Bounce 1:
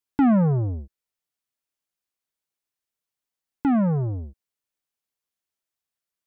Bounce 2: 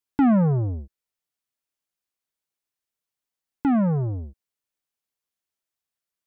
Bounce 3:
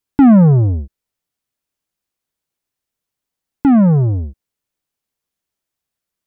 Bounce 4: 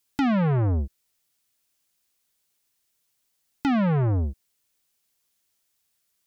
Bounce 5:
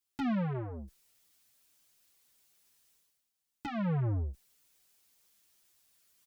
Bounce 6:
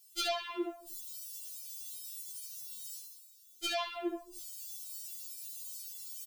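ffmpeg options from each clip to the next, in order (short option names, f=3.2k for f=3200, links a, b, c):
-af anull
-af "lowshelf=f=430:g=7,volume=5dB"
-af "acompressor=threshold=-13dB:ratio=6,asoftclip=type=tanh:threshold=-20.5dB,highshelf=f=2.1k:g=10.5"
-filter_complex "[0:a]areverse,acompressor=mode=upward:threshold=-44dB:ratio=2.5,areverse,asplit=2[a][b];[b]adelay=7.1,afreqshift=-2.4[c];[a][c]amix=inputs=2:normalize=1,volume=-8dB"
-filter_complex "[0:a]aecho=1:1:25|67:0.376|0.447,acrossover=split=430[a][b];[b]aexciter=amount=8:drive=5.6:freq=2.7k[c];[a][c]amix=inputs=2:normalize=0,afftfilt=real='re*4*eq(mod(b,16),0)':imag='im*4*eq(mod(b,16),0)':win_size=2048:overlap=0.75,volume=3dB"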